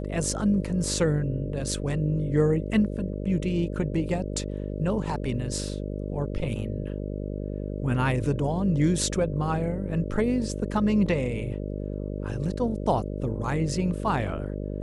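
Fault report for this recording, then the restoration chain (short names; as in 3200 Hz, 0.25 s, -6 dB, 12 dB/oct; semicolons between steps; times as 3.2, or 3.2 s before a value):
buzz 50 Hz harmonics 12 -32 dBFS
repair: de-hum 50 Hz, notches 12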